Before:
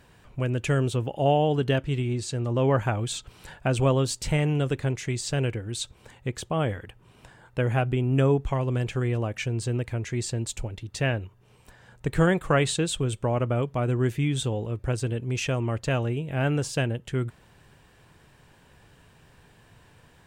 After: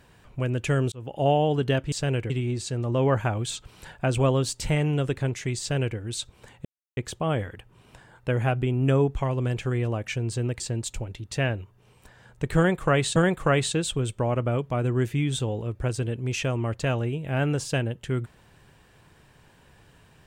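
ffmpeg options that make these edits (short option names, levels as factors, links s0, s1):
-filter_complex "[0:a]asplit=7[s0][s1][s2][s3][s4][s5][s6];[s0]atrim=end=0.92,asetpts=PTS-STARTPTS,afade=t=out:st=0.916:d=0.004:c=hsin[s7];[s1]atrim=start=0.92:end=1.922,asetpts=PTS-STARTPTS,afade=t=in:d=0.28[s8];[s2]atrim=start=5.218:end=5.602[s9];[s3]atrim=start=1.918:end=6.27,asetpts=PTS-STARTPTS,afade=t=out:st=4.348:d=0.004:c=hsin,apad=pad_dur=0.32[s10];[s4]atrim=start=6.27:end=9.902,asetpts=PTS-STARTPTS,afade=t=in:d=0.004:c=hsin[s11];[s5]atrim=start=10.228:end=12.792[s12];[s6]atrim=start=12.198[s13];[s7][s8]concat=n=2:v=0:a=1[s14];[s14][s9]acrossfade=d=0.004:c1=hsin:c2=hsin[s15];[s10][s11]concat=n=2:v=0:a=1[s16];[s15][s16]acrossfade=d=0.004:c1=hsin:c2=hsin[s17];[s17][s12]acrossfade=d=0.004:c1=hsin:c2=hsin[s18];[s18][s13]acrossfade=d=0.004:c1=hsin:c2=hsin"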